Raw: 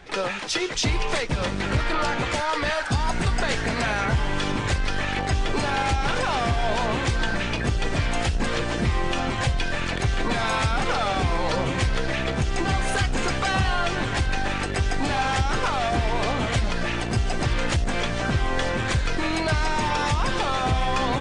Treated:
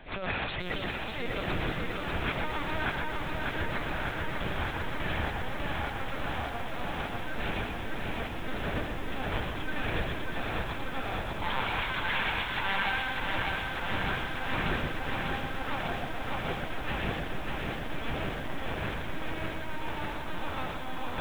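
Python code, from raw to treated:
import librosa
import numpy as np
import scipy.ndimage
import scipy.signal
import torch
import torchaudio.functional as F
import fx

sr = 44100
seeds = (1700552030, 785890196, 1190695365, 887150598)

y = fx.highpass(x, sr, hz=820.0, slope=24, at=(11.42, 13.02))
y = fx.over_compress(y, sr, threshold_db=-28.0, ratio=-0.5)
y = fx.echo_feedback(y, sr, ms=124, feedback_pct=51, wet_db=-4)
y = fx.lpc_vocoder(y, sr, seeds[0], excitation='pitch_kept', order=10)
y = fx.echo_crushed(y, sr, ms=597, feedback_pct=80, bits=8, wet_db=-4)
y = y * 10.0 ** (-8.0 / 20.0)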